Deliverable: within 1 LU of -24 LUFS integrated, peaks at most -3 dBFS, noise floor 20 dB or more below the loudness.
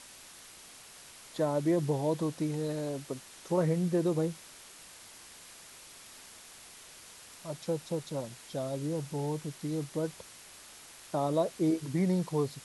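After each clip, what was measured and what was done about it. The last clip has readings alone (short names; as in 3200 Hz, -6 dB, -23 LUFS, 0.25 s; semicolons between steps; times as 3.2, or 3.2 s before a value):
noise floor -52 dBFS; noise floor target -53 dBFS; loudness -32.5 LUFS; peak -17.0 dBFS; loudness target -24.0 LUFS
-> denoiser 6 dB, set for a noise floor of -52 dBFS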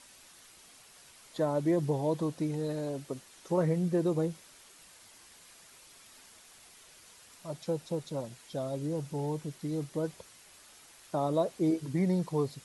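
noise floor -57 dBFS; loudness -32.5 LUFS; peak -17.0 dBFS; loudness target -24.0 LUFS
-> gain +8.5 dB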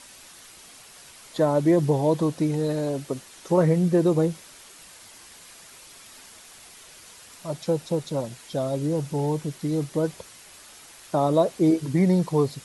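loudness -24.0 LUFS; peak -8.5 dBFS; noise floor -48 dBFS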